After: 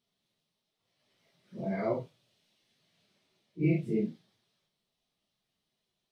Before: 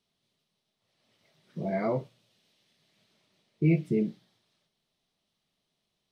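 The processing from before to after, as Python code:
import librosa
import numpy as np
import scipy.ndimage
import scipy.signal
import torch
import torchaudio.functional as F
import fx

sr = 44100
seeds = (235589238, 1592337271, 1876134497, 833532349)

y = fx.phase_scramble(x, sr, seeds[0], window_ms=100)
y = y * 10.0 ** (-3.0 / 20.0)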